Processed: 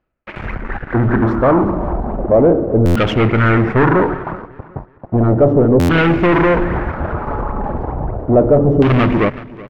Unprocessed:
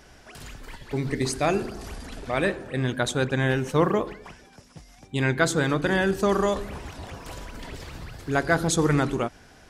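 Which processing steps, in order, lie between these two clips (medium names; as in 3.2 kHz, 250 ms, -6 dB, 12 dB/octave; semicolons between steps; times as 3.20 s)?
median filter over 5 samples; gate with hold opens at -38 dBFS; peaking EQ 4.2 kHz -15 dB 1.7 oct; reverse; upward compressor, threshold -41 dBFS; reverse; waveshaping leveller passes 5; pitch shift -2.5 st; LFO low-pass saw down 0.34 Hz 470–3000 Hz; on a send: feedback delay 374 ms, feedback 31%, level -19.5 dB; on the sum: buffer glitch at 2.85/5.79 s, samples 512, times 8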